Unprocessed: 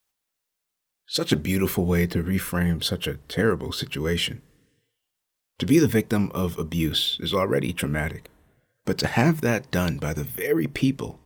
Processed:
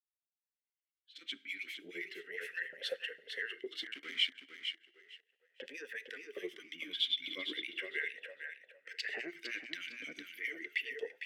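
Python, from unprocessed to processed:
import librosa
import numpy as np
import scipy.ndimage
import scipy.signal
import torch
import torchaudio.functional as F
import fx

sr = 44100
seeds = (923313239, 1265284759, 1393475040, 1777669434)

p1 = fx.fade_in_head(x, sr, length_s=2.68)
p2 = fx.peak_eq(p1, sr, hz=770.0, db=-9.5, octaves=1.4)
p3 = fx.over_compress(p2, sr, threshold_db=-25.0, ratio=-0.5)
p4 = p2 + (p3 * 10.0 ** (-0.5 / 20.0))
p5 = fx.harmonic_tremolo(p4, sr, hz=9.6, depth_pct=100, crossover_hz=1900.0)
p6 = fx.rev_double_slope(p5, sr, seeds[0], early_s=0.52, late_s=2.0, knee_db=-18, drr_db=18.0)
p7 = fx.sample_gate(p6, sr, floor_db=-28.0, at=(3.81, 4.34), fade=0.02)
p8 = fx.filter_lfo_highpass(p7, sr, shape='saw_up', hz=1.1, low_hz=620.0, high_hz=2200.0, q=2.1)
p9 = fx.echo_feedback(p8, sr, ms=456, feedback_pct=22, wet_db=-7.5)
p10 = fx.vowel_sweep(p9, sr, vowels='e-i', hz=0.35)
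y = p10 * 10.0 ** (2.0 / 20.0)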